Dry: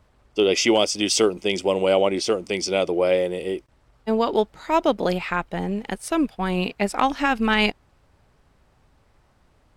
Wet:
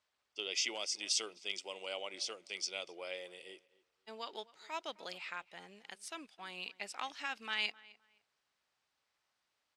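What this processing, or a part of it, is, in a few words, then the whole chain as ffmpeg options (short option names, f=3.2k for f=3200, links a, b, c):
piezo pickup straight into a mixer: -filter_complex "[0:a]asettb=1/sr,asplit=3[a][b][c];[a]atrim=end=0.684[d];[b]atrim=start=0.68:end=1.11,asetpts=PTS-STARTPTS,afade=t=in:d=0.004:c=qsin,afade=t=out:st=0.426:d=0.004:c=qsin,equalizer=f=3.1k:t=o:w=0.23:g=-9[e];[c]atrim=start=1.106[f];[d][e]acrossfade=d=0.004:c1=hsin:c2=qsin[g];[g][f]acrossfade=d=0.004:c1=qsin:c2=hsin,asettb=1/sr,asplit=3[h][i][j];[h]atrim=end=1.614[k];[i]atrim=start=1.61:end=2.14,asetpts=PTS-STARTPTS,afade=t=in:d=0.004:c=qsin,afade=t=out:st=0.526:d=0.004:c=qsin,highpass=180[l];[j]atrim=start=2.136[m];[k][l]acrossfade=d=0.004:c1=hsin:c2=qsin[n];[n][m]acrossfade=d=0.004:c1=qsin:c2=hsin,lowpass=5k,aderivative,asplit=2[o][p];[p]adelay=259,lowpass=f=2.6k:p=1,volume=-20.5dB,asplit=2[q][r];[r]adelay=259,lowpass=f=2.6k:p=1,volume=0.26[s];[o][q][s]amix=inputs=3:normalize=0,volume=-4dB"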